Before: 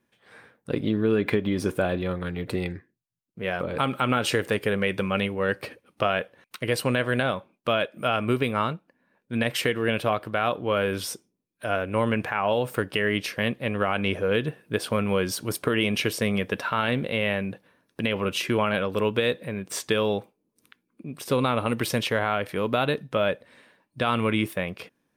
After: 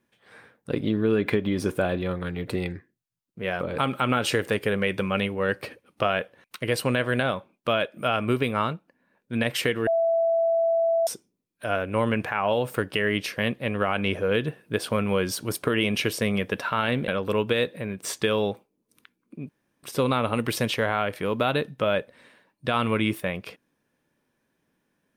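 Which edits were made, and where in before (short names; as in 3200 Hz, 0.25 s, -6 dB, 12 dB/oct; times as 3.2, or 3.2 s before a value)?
9.87–11.07 bleep 664 Hz -19 dBFS
17.08–18.75 cut
21.16 insert room tone 0.34 s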